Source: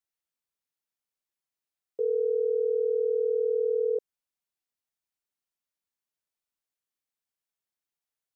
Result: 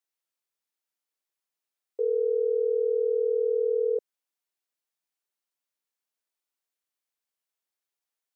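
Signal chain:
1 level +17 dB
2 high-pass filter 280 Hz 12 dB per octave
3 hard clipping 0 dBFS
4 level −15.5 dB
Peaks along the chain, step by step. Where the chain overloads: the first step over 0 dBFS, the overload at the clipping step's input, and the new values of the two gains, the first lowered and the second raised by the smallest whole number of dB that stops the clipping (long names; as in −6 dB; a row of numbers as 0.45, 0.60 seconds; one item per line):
−3.0, −3.5, −3.5, −19.0 dBFS
no step passes full scale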